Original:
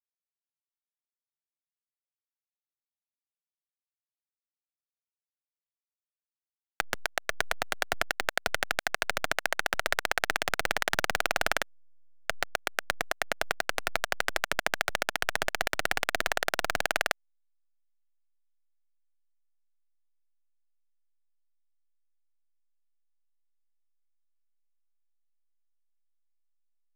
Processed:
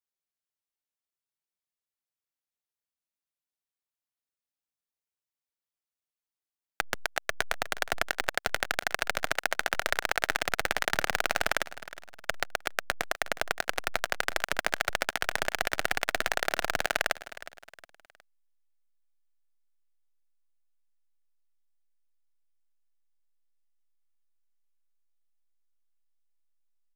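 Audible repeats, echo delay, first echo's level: 3, 0.363 s, -16.0 dB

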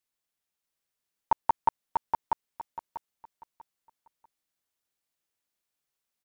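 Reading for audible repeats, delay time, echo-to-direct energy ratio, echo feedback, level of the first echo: 3, 0.642 s, -3.5 dB, 26%, -4.0 dB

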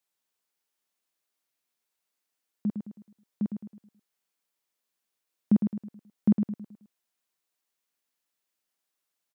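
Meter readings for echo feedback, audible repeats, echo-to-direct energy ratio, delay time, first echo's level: 41%, 4, -6.0 dB, 0.107 s, -7.0 dB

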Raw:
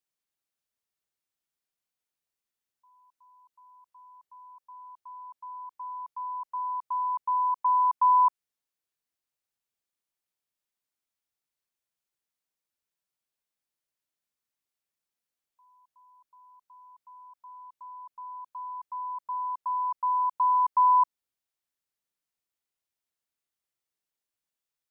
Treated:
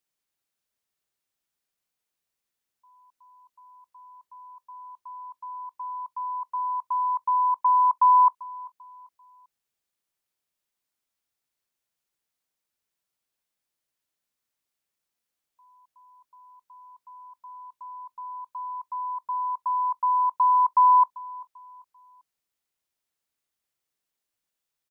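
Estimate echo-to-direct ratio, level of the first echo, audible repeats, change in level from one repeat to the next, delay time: -20.0 dB, -20.5 dB, 2, -9.5 dB, 0.392 s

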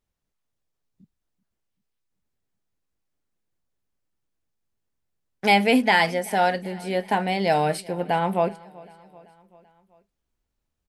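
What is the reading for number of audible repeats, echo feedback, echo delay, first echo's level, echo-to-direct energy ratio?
3, 58%, 0.385 s, -23.0 dB, -21.5 dB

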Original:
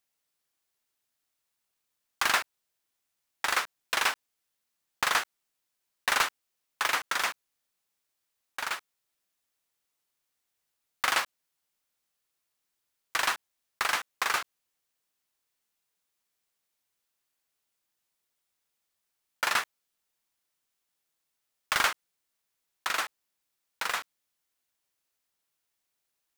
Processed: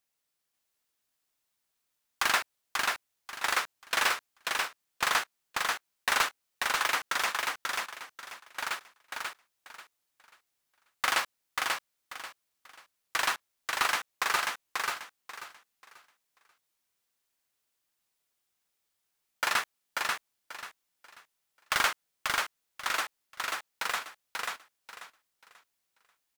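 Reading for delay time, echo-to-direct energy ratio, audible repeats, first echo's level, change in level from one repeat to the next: 0.538 s, -2.5 dB, 3, -3.0 dB, -11.5 dB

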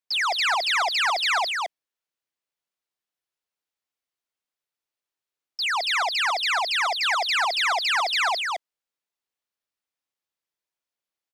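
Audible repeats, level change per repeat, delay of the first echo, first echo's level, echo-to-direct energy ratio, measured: 1, no steady repeat, 0.217 s, -3.5 dB, -3.5 dB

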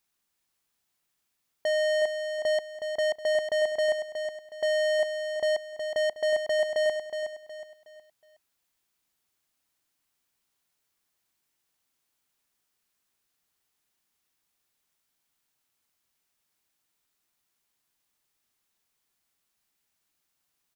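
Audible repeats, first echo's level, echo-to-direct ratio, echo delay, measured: 4, -7.0 dB, -6.5 dB, 0.367 s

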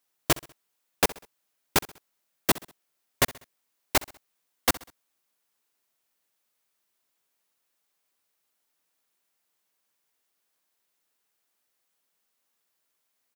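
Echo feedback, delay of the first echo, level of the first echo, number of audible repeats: 44%, 65 ms, -19.5 dB, 3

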